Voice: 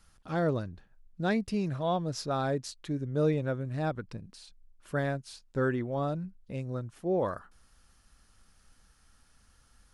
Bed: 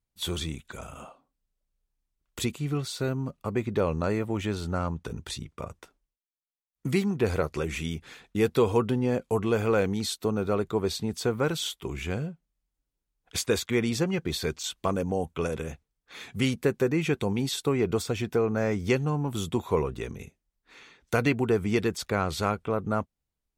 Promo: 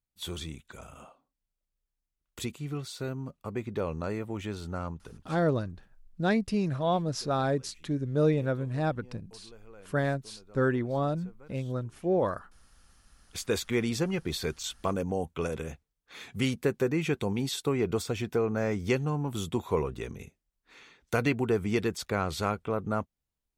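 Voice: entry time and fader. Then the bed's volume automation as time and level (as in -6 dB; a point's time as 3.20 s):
5.00 s, +2.5 dB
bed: 4.91 s -6 dB
5.67 s -28 dB
12.72 s -28 dB
13.55 s -2.5 dB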